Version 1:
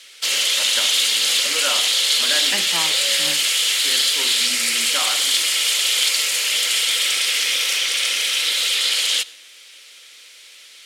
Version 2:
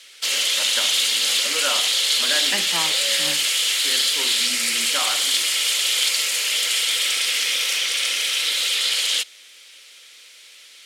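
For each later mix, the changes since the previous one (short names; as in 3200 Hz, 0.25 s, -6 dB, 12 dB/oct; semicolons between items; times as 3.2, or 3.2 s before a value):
background: send off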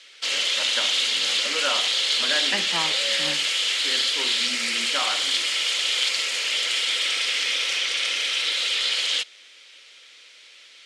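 master: add air absorption 90 m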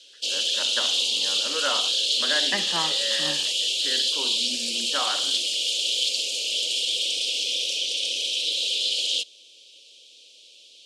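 background: add inverse Chebyshev band-stop 910–2000 Hz, stop band 40 dB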